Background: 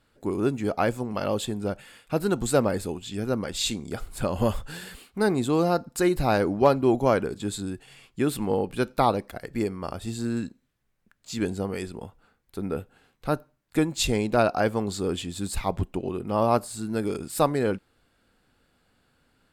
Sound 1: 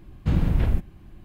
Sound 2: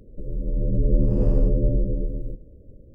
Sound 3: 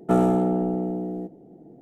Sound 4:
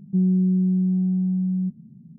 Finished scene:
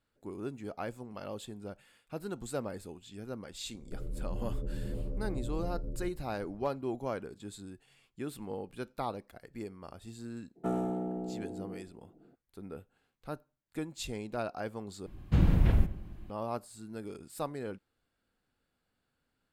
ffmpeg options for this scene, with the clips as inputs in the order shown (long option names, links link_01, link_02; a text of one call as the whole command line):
ffmpeg -i bed.wav -i cue0.wav -i cue1.wav -i cue2.wav -filter_complex "[0:a]volume=-14.5dB[link_01];[2:a]acompressor=threshold=-24dB:ratio=6:attack=3.2:release=140:knee=1:detection=peak[link_02];[1:a]asplit=2[link_03][link_04];[link_04]adelay=106,lowpass=frequency=2000:poles=1,volume=-16dB,asplit=2[link_05][link_06];[link_06]adelay=106,lowpass=frequency=2000:poles=1,volume=0.53,asplit=2[link_07][link_08];[link_08]adelay=106,lowpass=frequency=2000:poles=1,volume=0.53,asplit=2[link_09][link_10];[link_10]adelay=106,lowpass=frequency=2000:poles=1,volume=0.53,asplit=2[link_11][link_12];[link_12]adelay=106,lowpass=frequency=2000:poles=1,volume=0.53[link_13];[link_03][link_05][link_07][link_09][link_11][link_13]amix=inputs=6:normalize=0[link_14];[link_01]asplit=2[link_15][link_16];[link_15]atrim=end=15.064[link_17];[link_14]atrim=end=1.24,asetpts=PTS-STARTPTS,volume=-3dB[link_18];[link_16]atrim=start=16.296[link_19];[link_02]atrim=end=2.94,asetpts=PTS-STARTPTS,volume=-8dB,afade=type=in:duration=0.004:curve=hsin,afade=type=out:start_time=2.936:duration=0.004:curve=hsin,adelay=3740[link_20];[3:a]atrim=end=1.81,asetpts=PTS-STARTPTS,volume=-13dB,afade=type=in:duration=0.02,afade=type=out:start_time=1.79:duration=0.02,adelay=10550[link_21];[link_17][link_18]acrossfade=duration=0.004:curve1=hsin:curve2=hsin[link_22];[link_22][link_19]acrossfade=duration=0.004:curve1=hsin:curve2=hsin[link_23];[link_23][link_20][link_21]amix=inputs=3:normalize=0" out.wav